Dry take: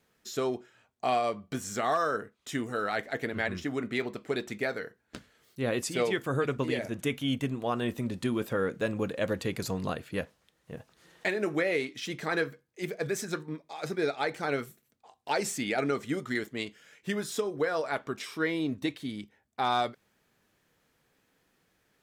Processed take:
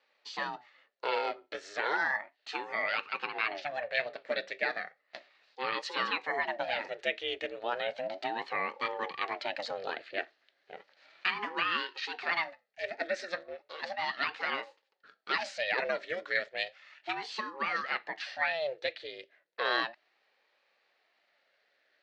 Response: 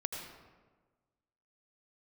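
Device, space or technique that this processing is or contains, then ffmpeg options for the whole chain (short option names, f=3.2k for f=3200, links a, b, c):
voice changer toy: -af "aeval=exprs='val(0)*sin(2*PI*430*n/s+430*0.6/0.34*sin(2*PI*0.34*n/s))':c=same,highpass=540,equalizer=f=580:t=q:w=4:g=6,equalizer=f=1k:t=q:w=4:g=-7,equalizer=f=1.8k:t=q:w=4:g=8,equalizer=f=2.6k:t=q:w=4:g=3,equalizer=f=4.3k:t=q:w=4:g=7,lowpass=f=4.7k:w=0.5412,lowpass=f=4.7k:w=1.3066,volume=1dB"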